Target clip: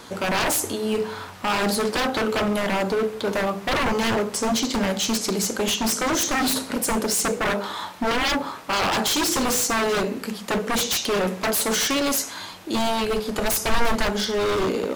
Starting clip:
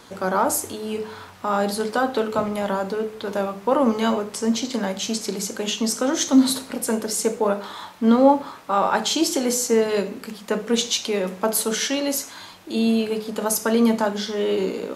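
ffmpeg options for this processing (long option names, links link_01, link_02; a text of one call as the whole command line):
ffmpeg -i in.wav -filter_complex "[0:a]aeval=exprs='0.0841*(abs(mod(val(0)/0.0841+3,4)-2)-1)':channel_layout=same,asplit=3[link_01][link_02][link_03];[link_01]afade=type=out:start_time=13.01:duration=0.02[link_04];[link_02]asubboost=boost=4:cutoff=82,afade=type=in:start_time=13.01:duration=0.02,afade=type=out:start_time=14.61:duration=0.02[link_05];[link_03]afade=type=in:start_time=14.61:duration=0.02[link_06];[link_04][link_05][link_06]amix=inputs=3:normalize=0,volume=4.5dB" out.wav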